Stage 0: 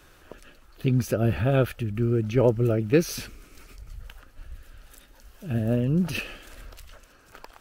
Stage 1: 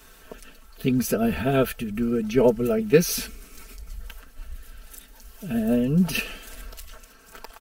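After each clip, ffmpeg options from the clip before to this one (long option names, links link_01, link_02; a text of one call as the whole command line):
ffmpeg -i in.wav -af "highshelf=frequency=6600:gain=9,aecho=1:1:4.5:0.91" out.wav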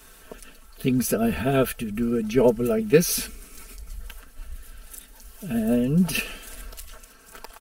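ffmpeg -i in.wav -af "equalizer=frequency=9900:width_type=o:width=0.59:gain=5.5" out.wav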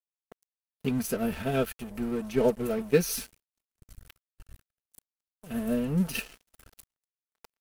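ffmpeg -i in.wav -af "aeval=exprs='sgn(val(0))*max(abs(val(0))-0.0178,0)':channel_layout=same,agate=range=-23dB:threshold=-51dB:ratio=16:detection=peak,volume=-5dB" out.wav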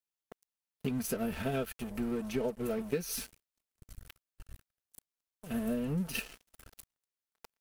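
ffmpeg -i in.wav -af "acompressor=threshold=-30dB:ratio=6" out.wav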